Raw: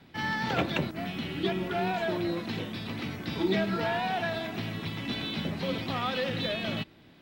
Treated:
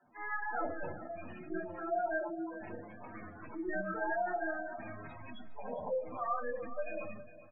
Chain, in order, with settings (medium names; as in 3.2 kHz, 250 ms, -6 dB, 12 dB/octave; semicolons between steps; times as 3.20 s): tracing distortion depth 0.11 ms; three-band isolator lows -16 dB, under 520 Hz, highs -23 dB, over 2.2 kHz; harmony voices -12 st -12 dB, +3 st -14 dB; dynamic bell 2.3 kHz, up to +3 dB, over -47 dBFS, Q 0.98; time-frequency box 5.31–5.69 s, 430–1100 Hz +8 dB; simulated room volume 190 m³, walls furnished, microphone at 3.3 m; spectral gate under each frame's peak -10 dB strong; feedback delay 391 ms, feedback 25%, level -15.5 dB; speed mistake 25 fps video run at 24 fps; feedback comb 120 Hz, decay 0.41 s, harmonics all, mix 40%; de-hum 55.83 Hz, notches 12; trim -5.5 dB